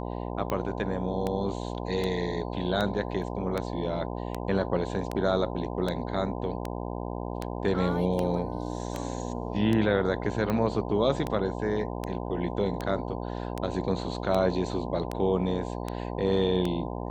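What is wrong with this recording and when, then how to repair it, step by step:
buzz 60 Hz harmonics 17 -34 dBFS
tick 78 rpm -16 dBFS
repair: de-click; de-hum 60 Hz, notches 17

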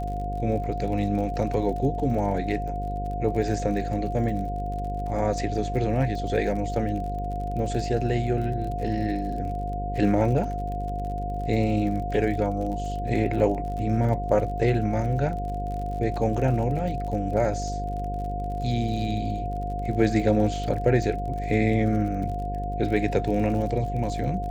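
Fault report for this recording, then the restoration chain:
buzz 50 Hz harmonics 11 -31 dBFS
crackle 46 per s -34 dBFS
whine 710 Hz -31 dBFS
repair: de-click; band-stop 710 Hz, Q 30; de-hum 50 Hz, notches 11

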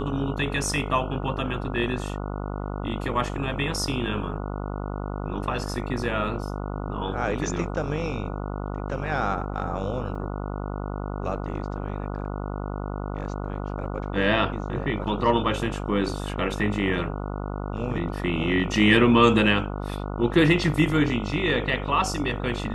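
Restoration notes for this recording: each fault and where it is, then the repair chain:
buzz 50 Hz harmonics 29 -31 dBFS
10.15 s: dropout 4.3 ms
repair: de-hum 50 Hz, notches 29; interpolate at 10.15 s, 4.3 ms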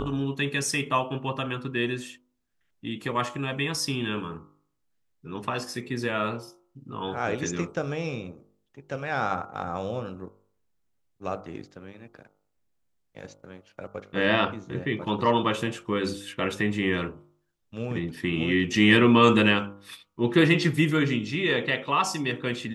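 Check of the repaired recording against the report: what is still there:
nothing left

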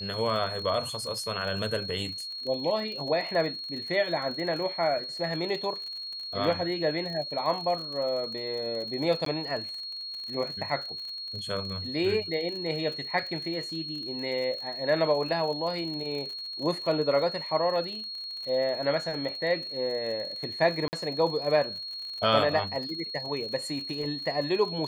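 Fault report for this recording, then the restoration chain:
crackle 48 per s -36 dBFS
whine 4.3 kHz -35 dBFS
9.25–9.26 s: dropout 13 ms
20.88–20.93 s: dropout 49 ms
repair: de-click; band-stop 4.3 kHz, Q 30; interpolate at 9.25 s, 13 ms; interpolate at 20.88 s, 49 ms

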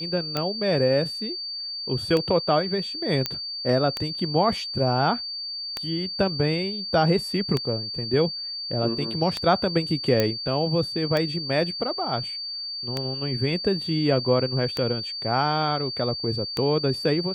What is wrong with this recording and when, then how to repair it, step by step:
tick 33 1/3 rpm -11 dBFS
whine 4.6 kHz -30 dBFS
3.26 s: pop -9 dBFS
10.20 s: pop -7 dBFS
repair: de-click; band-stop 4.6 kHz, Q 30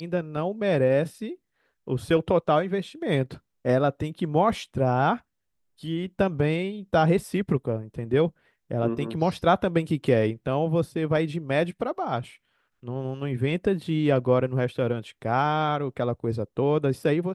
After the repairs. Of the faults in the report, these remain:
nothing left

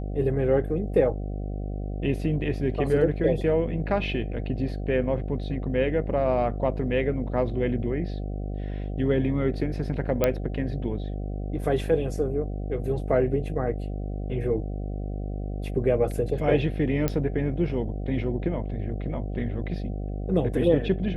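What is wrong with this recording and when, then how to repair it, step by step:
buzz 50 Hz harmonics 15 -31 dBFS
10.24 s: pop -8 dBFS
17.08 s: pop -11 dBFS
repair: de-click; de-hum 50 Hz, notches 15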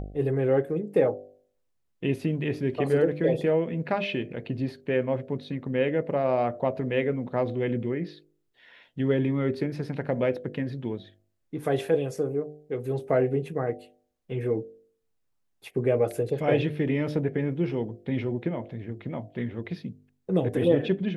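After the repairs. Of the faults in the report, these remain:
nothing left

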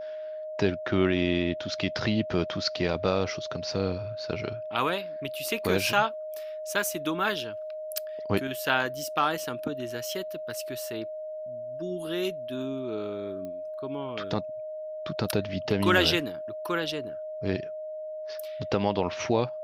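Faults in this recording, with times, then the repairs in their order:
whine 620 Hz -34 dBFS
13.45 s: pop -27 dBFS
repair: de-click; band-stop 620 Hz, Q 30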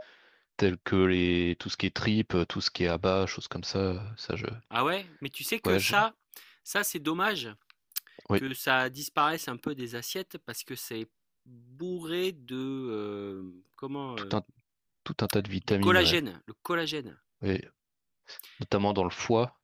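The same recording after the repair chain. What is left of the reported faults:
13.45 s: pop

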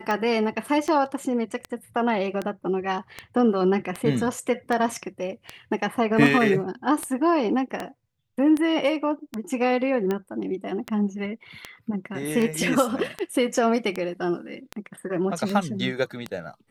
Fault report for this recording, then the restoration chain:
tick 78 rpm -14 dBFS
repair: de-click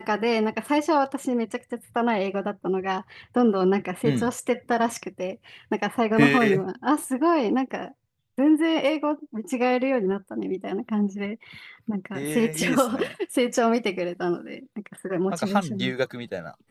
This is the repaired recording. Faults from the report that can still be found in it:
nothing left

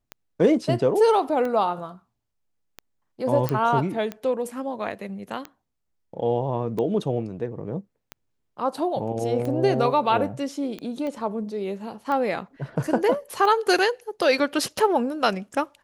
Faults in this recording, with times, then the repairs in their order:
tick 45 rpm -18 dBFS
3.49 s: pop -10 dBFS
11.07 s: pop -21 dBFS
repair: de-click

